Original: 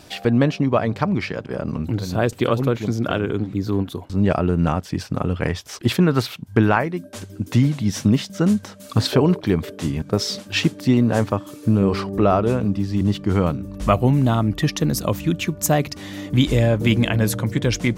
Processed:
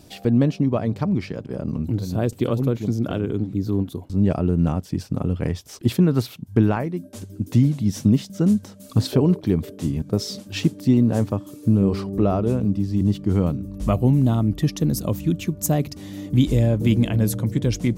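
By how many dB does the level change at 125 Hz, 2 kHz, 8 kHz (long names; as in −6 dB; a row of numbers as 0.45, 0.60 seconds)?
0.0, −11.0, −4.0 decibels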